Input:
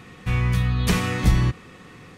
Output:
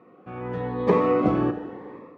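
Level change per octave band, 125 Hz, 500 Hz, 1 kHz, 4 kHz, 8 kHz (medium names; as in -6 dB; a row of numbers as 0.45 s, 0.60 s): -11.5 dB, +11.0 dB, +4.5 dB, under -15 dB, under -25 dB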